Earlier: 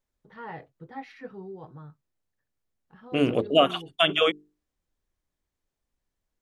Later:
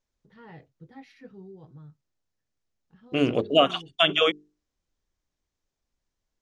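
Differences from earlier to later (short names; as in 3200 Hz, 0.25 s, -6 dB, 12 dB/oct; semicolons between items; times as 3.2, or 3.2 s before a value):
first voice: add bell 1000 Hz -12.5 dB 2.6 oct; second voice: add synth low-pass 6200 Hz, resonance Q 1.7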